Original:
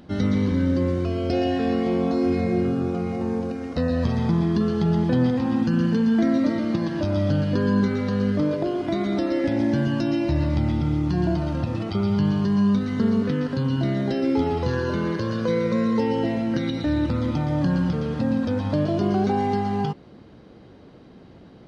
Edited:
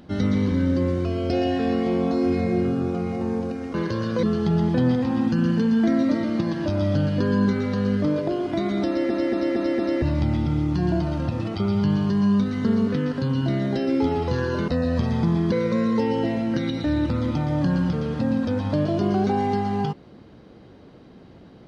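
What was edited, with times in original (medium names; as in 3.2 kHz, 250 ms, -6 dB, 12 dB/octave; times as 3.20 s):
3.74–4.58 s: swap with 15.03–15.52 s
9.22 s: stutter in place 0.23 s, 5 plays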